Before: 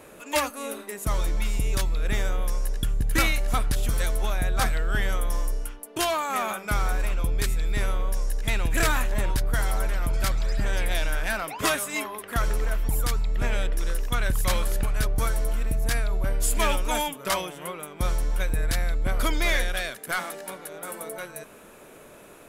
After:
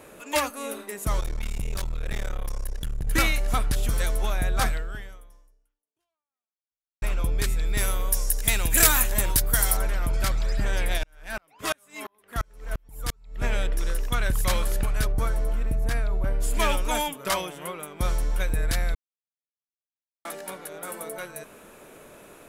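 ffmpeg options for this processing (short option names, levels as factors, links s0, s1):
-filter_complex "[0:a]asettb=1/sr,asplit=3[s0][s1][s2];[s0]atrim=end=1.204[s3];[s1]atrim=start=1.2:end=3.07,asetpts=PTS-STARTPTS,afade=t=in:d=0.004:c=qsin,afade=t=out:st=1.866:d=0.004:c=qsin,aeval=exprs='(tanh(17.8*val(0)+0.7)-tanh(0.7))/17.8':c=same[s4];[s2]atrim=start=3.066[s5];[s3][s4]acrossfade=d=0.004:c1=hsin:c2=qsin[s6];[s6][s5]acrossfade=d=0.004:c1=qsin:c2=hsin,asettb=1/sr,asplit=3[s7][s8][s9];[s7]atrim=end=7.774[s10];[s8]atrim=start=7.77:end=9.77,asetpts=PTS-STARTPTS,afade=t=in:d=0.004:c=qsin,afade=t=out:st=1.996:d=0.004:c=qsin,aemphasis=mode=production:type=75fm[s11];[s9]atrim=start=9.766[s12];[s10][s11]acrossfade=d=0.004:c1=hsin:c2=qsin[s13];[s13][s12]acrossfade=d=0.004:c1=qsin:c2=hsin,asplit=3[s14][s15][s16];[s14]afade=t=out:st=10.97:d=0.02[s17];[s15]aeval=exprs='val(0)*pow(10,-40*if(lt(mod(-2.9*n/s,1),2*abs(-2.9)/1000),1-mod(-2.9*n/s,1)/(2*abs(-2.9)/1000),(mod(-2.9*n/s,1)-2*abs(-2.9)/1000)/(1-2*abs(-2.9)/1000))/20)':c=same,afade=t=in:st=10.97:d=0.02,afade=t=out:st=13.42:d=0.02[s18];[s16]afade=t=in:st=13.42:d=0.02[s19];[s17][s18][s19]amix=inputs=3:normalize=0,asettb=1/sr,asplit=3[s20][s21][s22];[s20]atrim=end=15.124[s23];[s21]atrim=start=15.12:end=16.54,asetpts=PTS-STARTPTS,afade=t=in:d=0.004:c=qsin,afade=t=out:st=1.416:d=0.004:c=qsin,highshelf=f=2400:g=-9[s24];[s22]atrim=start=16.536[s25];[s23][s24]acrossfade=d=0.004:c1=hsin:c2=qsin[s26];[s26][s25]acrossfade=d=0.004:c1=qsin:c2=hsin,asplit=4[s27][s28][s29][s30];[s27]atrim=end=7.02,asetpts=PTS-STARTPTS,afade=t=out:st=4.69:d=2.33:c=exp[s31];[s28]atrim=start=7.02:end=18.95,asetpts=PTS-STARTPTS,afade=t=in:d=0.004:c=hsin,afade=t=out:st=11.926:d=0.004:c=hsin[s32];[s29]atrim=start=18.95:end=20.25,asetpts=PTS-STARTPTS,volume=0[s33];[s30]atrim=start=20.25,asetpts=PTS-STARTPTS,afade=t=in:d=0.004:c=hsin[s34];[s31][s32][s33][s34]concat=n=4:v=0:a=1"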